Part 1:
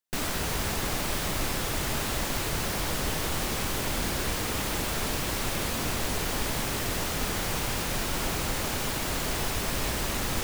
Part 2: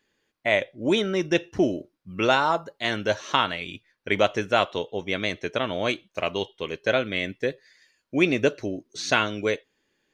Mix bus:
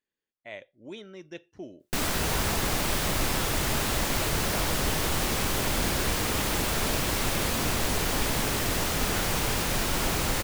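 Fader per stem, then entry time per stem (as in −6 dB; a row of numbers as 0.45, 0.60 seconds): +2.5, −19.5 decibels; 1.80, 0.00 seconds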